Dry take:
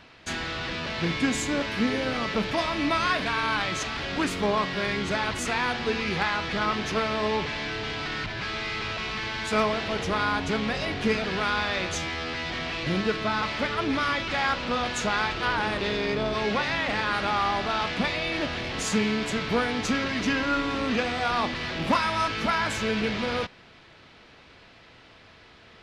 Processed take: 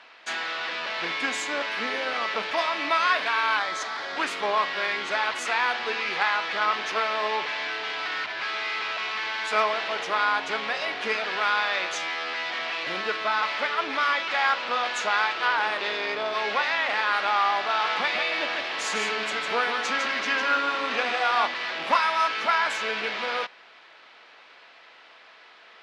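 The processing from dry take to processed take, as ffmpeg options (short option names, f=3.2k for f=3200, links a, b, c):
-filter_complex "[0:a]asettb=1/sr,asplit=3[a][b][c];[a]atrim=end=3.594[d];[b]atrim=start=3.59:end=4.17,asetpts=PTS-STARTPTS,afade=t=in:d=0.004:c=qsin,afade=t=out:st=0.576:d=0.004:c=qsin,equalizer=f=2.7k:w=3.5:g=-13[e];[c]atrim=start=4.166[f];[d][e]acrossfade=d=0.004:c1=hsin:c2=qsin[g];[g][f]acrossfade=d=0.004:c1=qsin:c2=hsin,asettb=1/sr,asplit=3[h][i][j];[h]atrim=end=17.694[k];[i]atrim=start=17.69:end=21.47,asetpts=PTS-STARTPTS,afade=t=in:d=0.004:c=qsin,afade=t=out:st=3.776:d=0.004:c=qsin,aecho=1:1:153:0.562,atrim=end_sample=166698[l];[j]atrim=start=21.466[m];[k][l]acrossfade=d=0.004:c1=hsin:c2=qsin[n];[n][m]acrossfade=d=0.004:c1=qsin:c2=hsin,highpass=720,aemphasis=mode=reproduction:type=50kf,volume=4.5dB"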